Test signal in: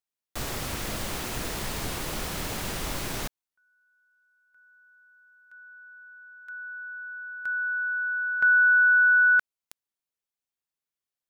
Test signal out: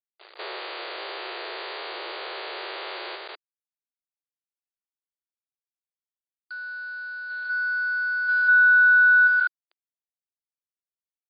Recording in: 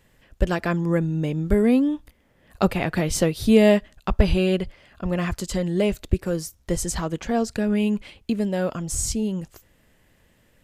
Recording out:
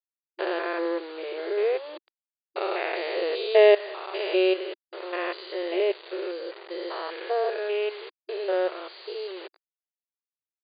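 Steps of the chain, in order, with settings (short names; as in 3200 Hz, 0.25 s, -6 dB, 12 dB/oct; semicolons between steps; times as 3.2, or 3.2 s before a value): stepped spectrum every 0.2 s; bit-crush 7-bit; brick-wall FIR band-pass 340–4800 Hz; gain +3 dB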